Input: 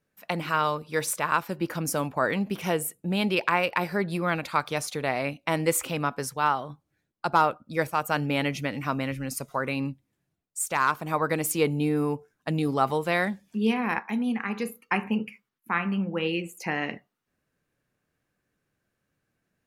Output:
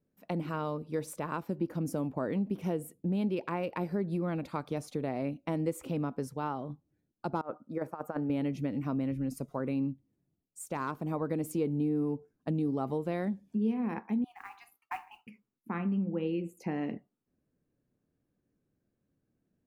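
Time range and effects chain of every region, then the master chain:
7.41–8.30 s: high-pass 570 Hz 6 dB/octave + resonant high shelf 2.1 kHz -11 dB, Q 1.5 + compressor with a negative ratio -28 dBFS, ratio -0.5
14.24–15.27 s: brick-wall FIR high-pass 690 Hz + peaking EQ 8.5 kHz -8 dB 1.5 oct + modulation noise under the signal 21 dB
whole clip: FFT filter 150 Hz 0 dB, 270 Hz +4 dB, 1.6 kHz -15 dB; compression 2.5:1, threshold -30 dBFS

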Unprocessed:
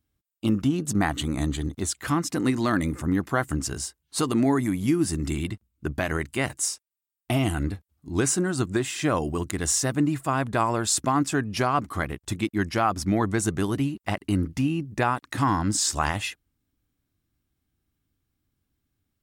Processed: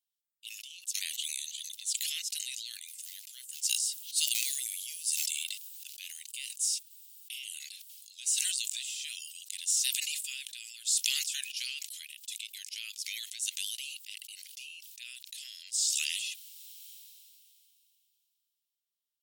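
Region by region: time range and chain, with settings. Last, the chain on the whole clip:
2.88–6.48 s: high-pass 73 Hz + treble shelf 4.1 kHz +6 dB + short-mantissa float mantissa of 4-bit
whole clip: steep high-pass 2.8 kHz 48 dB/octave; decay stretcher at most 21 dB/s; trim -4.5 dB

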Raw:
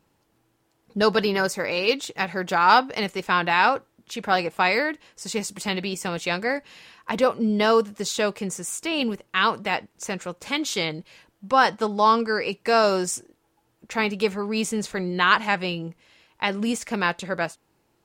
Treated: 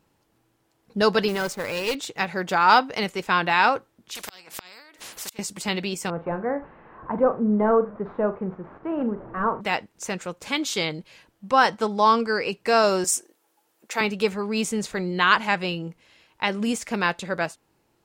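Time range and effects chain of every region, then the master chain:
1.28–1.95 s: hysteresis with a dead band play -34 dBFS + valve stage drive 19 dB, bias 0.45 + modulation noise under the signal 20 dB
4.15–5.39 s: tone controls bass -15 dB, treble +6 dB + inverted gate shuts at -17 dBFS, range -39 dB + spectrum-flattening compressor 4:1
6.10–9.61 s: one-bit delta coder 64 kbps, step -34.5 dBFS + low-pass 1.3 kHz 24 dB/octave + flutter echo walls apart 7.3 m, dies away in 0.23 s
13.04–14.01 s: high-pass 360 Hz + treble shelf 6.3 kHz +9 dB
whole clip: none

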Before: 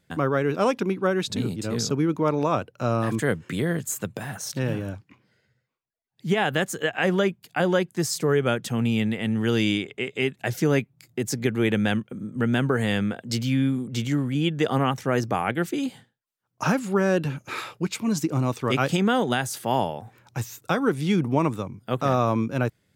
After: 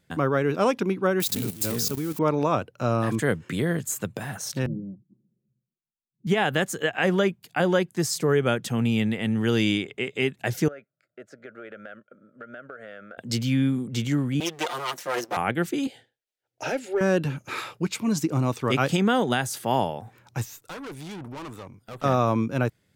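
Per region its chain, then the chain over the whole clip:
1.20–2.19 s: zero-crossing glitches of -22 dBFS + level held to a coarse grid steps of 14 dB + treble shelf 9.4 kHz +6.5 dB
4.66–6.27 s: four-pole ladder low-pass 330 Hz, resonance 35% + comb 5.5 ms, depth 93%
10.68–13.18 s: two resonant band-passes 920 Hz, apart 1.2 oct + compression, threshold -36 dBFS
14.40–15.37 s: comb filter that takes the minimum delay 5.7 ms + high-pass 420 Hz + treble shelf 4.3 kHz +5.5 dB
15.87–17.01 s: static phaser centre 460 Hz, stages 4 + overdrive pedal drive 11 dB, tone 2.1 kHz, clips at -15.5 dBFS
20.45–22.04 s: peaking EQ 160 Hz -8 dB 2 oct + valve stage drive 35 dB, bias 0.4
whole clip: none

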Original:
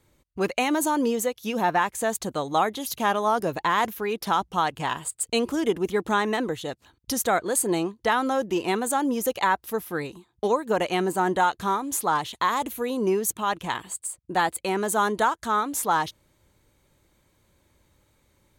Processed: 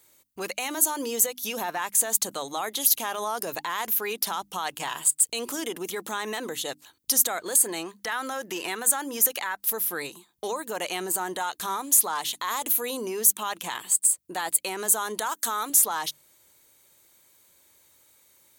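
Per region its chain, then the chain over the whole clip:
7.56–9.60 s: peaking EQ 1.7 kHz +7 dB 0.83 oct + compression 4:1, threshold -26 dBFS
15.26–15.70 s: high-pass 170 Hz + treble shelf 11 kHz +12 dB + upward compressor, threshold -37 dBFS
whole clip: peak limiter -20.5 dBFS; RIAA curve recording; hum notches 50/100/150/200/250/300 Hz

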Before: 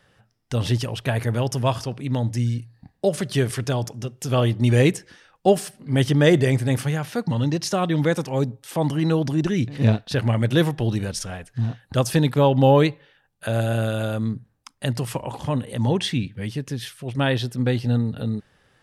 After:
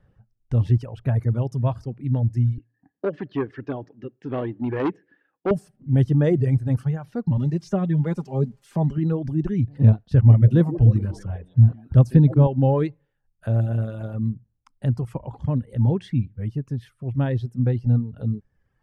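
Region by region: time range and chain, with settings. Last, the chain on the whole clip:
2.58–5.51 s: cabinet simulation 270–4100 Hz, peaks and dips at 290 Hz +10 dB, 410 Hz +4 dB, 1.7 kHz +10 dB, 2.7 kHz +4 dB + transformer saturation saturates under 1.5 kHz
7.37–8.98 s: zero-crossing glitches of -25.5 dBFS + low-pass 7.4 kHz + comb 5 ms, depth 58%
10.06–12.47 s: high-pass 57 Hz + bass shelf 130 Hz +11.5 dB + repeats whose band climbs or falls 154 ms, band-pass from 310 Hz, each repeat 0.7 oct, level -4 dB
whole clip: RIAA curve playback; reverb removal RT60 1.2 s; peaking EQ 3.6 kHz -7 dB 1.9 oct; trim -7 dB

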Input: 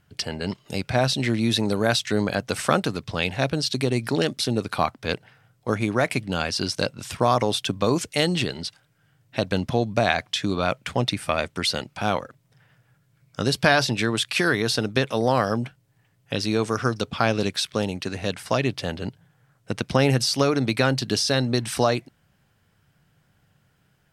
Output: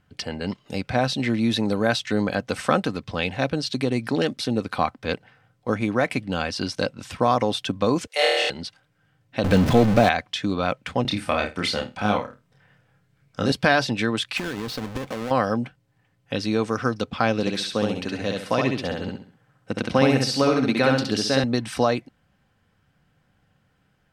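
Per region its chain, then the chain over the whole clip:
8.07–8.50 s: steep high-pass 460 Hz + flutter echo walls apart 4.4 m, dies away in 1.4 s
9.44–10.09 s: jump at every zero crossing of -20 dBFS + bass shelf 490 Hz +4.5 dB
11.02–13.52 s: doubling 29 ms -3.5 dB + flutter echo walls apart 9 m, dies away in 0.23 s
14.37–15.31 s: square wave that keeps the level + compression 16:1, threshold -25 dBFS
17.40–21.44 s: bass shelf 62 Hz -9 dB + feedback delay 67 ms, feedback 34%, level -3 dB
whole clip: low-pass 3.5 kHz 6 dB/octave; comb 3.9 ms, depth 31%

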